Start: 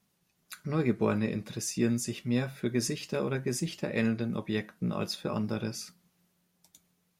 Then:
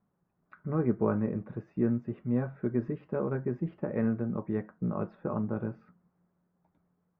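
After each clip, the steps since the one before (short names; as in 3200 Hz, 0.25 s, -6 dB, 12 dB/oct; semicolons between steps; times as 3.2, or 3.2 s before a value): LPF 1400 Hz 24 dB/oct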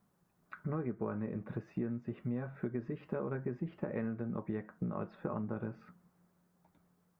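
high shelf 2000 Hz +9.5 dB; compressor 6:1, threshold -36 dBFS, peak gain reduction 14.5 dB; gain +2 dB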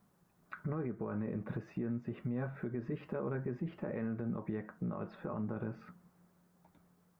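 limiter -32 dBFS, peak gain reduction 8.5 dB; gain +3.5 dB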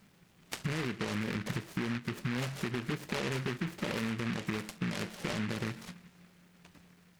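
compressor 3:1, threshold -40 dBFS, peak gain reduction 6 dB; noise-modulated delay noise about 1700 Hz, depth 0.26 ms; gain +8 dB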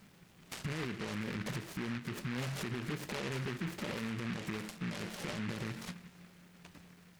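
limiter -33 dBFS, peak gain reduction 11 dB; gain +2.5 dB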